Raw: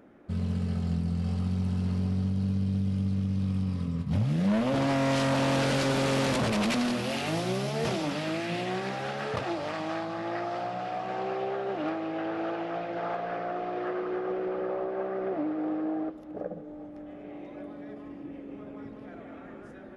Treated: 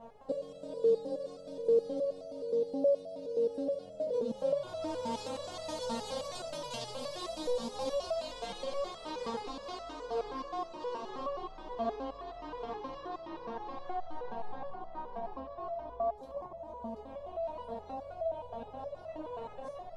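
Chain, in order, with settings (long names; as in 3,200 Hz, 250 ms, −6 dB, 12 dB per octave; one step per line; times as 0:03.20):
ring modulation 370 Hz
mains-hum notches 60/120/180/240/300/360/420/480/540 Hz
downward compressor 6 to 1, threshold −41 dBFS, peak gain reduction 16 dB
octave-band graphic EQ 125/500/1,000/2,000/4,000/8,000 Hz +6/+12/+4/−9/+9/+7 dB
boost into a limiter +21 dB
step-sequenced resonator 9.5 Hz 230–660 Hz
level −6 dB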